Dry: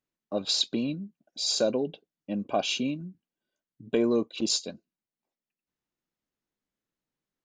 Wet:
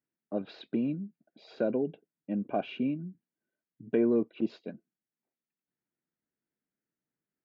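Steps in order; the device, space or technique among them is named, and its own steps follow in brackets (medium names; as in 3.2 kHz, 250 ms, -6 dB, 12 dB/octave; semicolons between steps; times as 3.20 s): bass cabinet (cabinet simulation 87–2000 Hz, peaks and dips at 88 Hz -7 dB, 550 Hz -5 dB, 800 Hz -4 dB, 1.1 kHz -10 dB)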